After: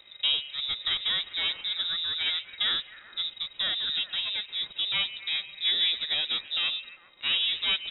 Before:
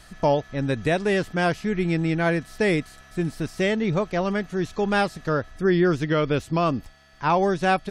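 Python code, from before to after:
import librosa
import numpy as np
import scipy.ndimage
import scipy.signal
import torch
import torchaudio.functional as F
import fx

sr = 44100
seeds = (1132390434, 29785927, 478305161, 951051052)

y = np.where(x < 0.0, 10.0 ** (-12.0 / 20.0) * x, x)
y = fx.echo_stepped(y, sr, ms=133, hz=1000.0, octaves=0.7, feedback_pct=70, wet_db=-9.5)
y = fx.freq_invert(y, sr, carrier_hz=3800)
y = y * 10.0 ** (-4.0 / 20.0)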